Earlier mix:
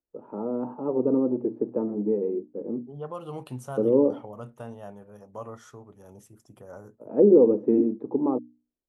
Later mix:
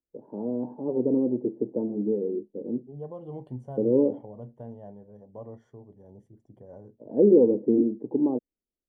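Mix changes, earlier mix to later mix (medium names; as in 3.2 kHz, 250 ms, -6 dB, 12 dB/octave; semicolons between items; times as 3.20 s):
first voice: remove hum notches 60/120/180/240/300 Hz; master: add boxcar filter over 34 samples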